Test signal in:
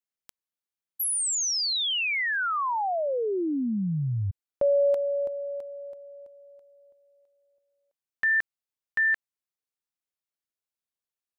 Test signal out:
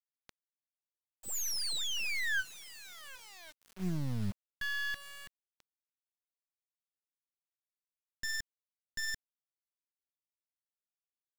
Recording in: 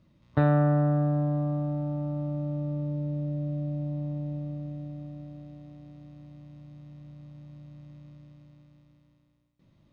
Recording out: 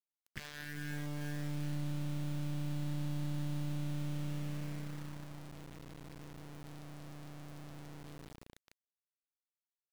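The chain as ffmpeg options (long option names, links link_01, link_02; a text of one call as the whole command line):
ffmpeg -i in.wav -filter_complex "[0:a]aresample=16000,aeval=exprs='0.0562*(abs(mod(val(0)/0.0562+3,4)-2)-1)':channel_layout=same,aresample=44100,afftfilt=real='re*(1-between(b*sr/4096,190,1500))':imag='im*(1-between(b*sr/4096,190,1500))':win_size=4096:overlap=0.75,asplit=2[link_01][link_02];[link_02]alimiter=level_in=7.5dB:limit=-24dB:level=0:latency=1:release=182,volume=-7.5dB,volume=1.5dB[link_03];[link_01][link_03]amix=inputs=2:normalize=0,equalizer=frequency=320:width=5.8:gain=-8,aeval=exprs='max(val(0),0)':channel_layout=same,equalizer=frequency=200:width_type=o:width=0.33:gain=8,equalizer=frequency=500:width_type=o:width=0.33:gain=6,equalizer=frequency=1600:width_type=o:width=0.33:gain=6,acrusher=bits=6:mix=0:aa=0.000001,volume=-7dB" out.wav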